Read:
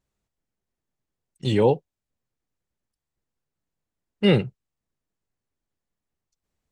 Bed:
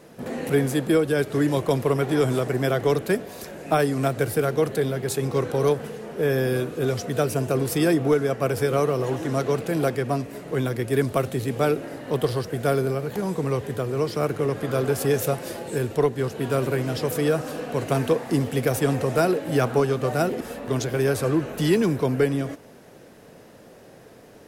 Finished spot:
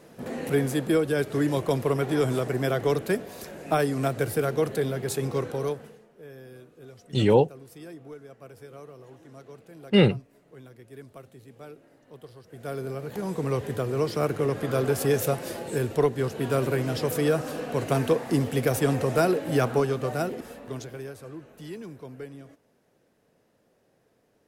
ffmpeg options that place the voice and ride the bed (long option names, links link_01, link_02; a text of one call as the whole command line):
ffmpeg -i stem1.wav -i stem2.wav -filter_complex "[0:a]adelay=5700,volume=0dB[link_01];[1:a]volume=18.5dB,afade=type=out:start_time=5.25:duration=0.83:silence=0.1,afade=type=in:start_time=12.43:duration=1.2:silence=0.0841395,afade=type=out:start_time=19.53:duration=1.61:silence=0.133352[link_02];[link_01][link_02]amix=inputs=2:normalize=0" out.wav